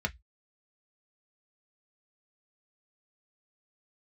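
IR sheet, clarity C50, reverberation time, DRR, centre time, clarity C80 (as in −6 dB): 26.5 dB, 0.10 s, 3.0 dB, 4 ms, 39.5 dB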